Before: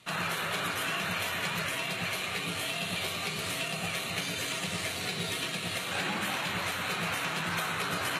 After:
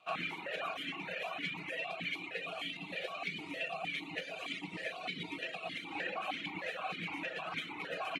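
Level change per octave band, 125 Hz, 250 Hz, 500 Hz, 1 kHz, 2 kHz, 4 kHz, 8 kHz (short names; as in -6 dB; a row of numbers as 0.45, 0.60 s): -13.5, -7.0, -4.5, -7.0, -7.0, -9.5, -23.5 dB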